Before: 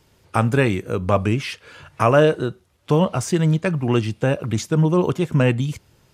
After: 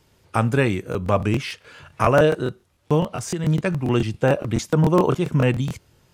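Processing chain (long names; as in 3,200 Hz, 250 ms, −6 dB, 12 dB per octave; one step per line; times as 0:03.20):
0:03.00–0:03.47: downward compressor, threshold −21 dBFS, peak gain reduction 8 dB
0:04.13–0:05.11: dynamic equaliser 810 Hz, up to +6 dB, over −31 dBFS, Q 0.71
regular buffer underruns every 0.14 s, samples 1,024, repeat, from 0:00.90
level −1.5 dB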